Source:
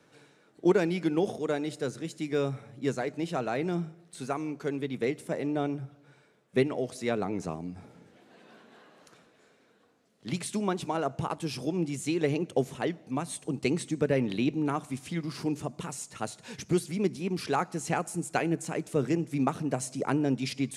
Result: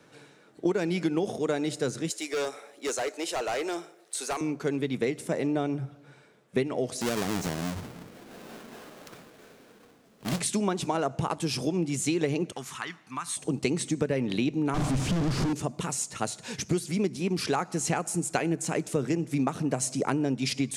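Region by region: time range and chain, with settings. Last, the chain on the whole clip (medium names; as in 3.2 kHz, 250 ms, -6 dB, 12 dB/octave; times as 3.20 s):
2.10–4.41 s: high-pass 390 Hz 24 dB/octave + treble shelf 5.6 kHz +9 dB + overload inside the chain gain 31.5 dB
7.01–10.40 s: square wave that keeps the level + compression 2.5:1, threshold -34 dBFS
12.52–13.37 s: resonant low shelf 800 Hz -12.5 dB, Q 3 + compression 2:1, threshold -38 dBFS
14.74–15.53 s: one-bit comparator + low-pass 10 kHz + tilt EQ -3 dB/octave
whole clip: compression, threshold -28 dBFS; dynamic bell 6.7 kHz, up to +4 dB, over -55 dBFS, Q 0.98; trim +5 dB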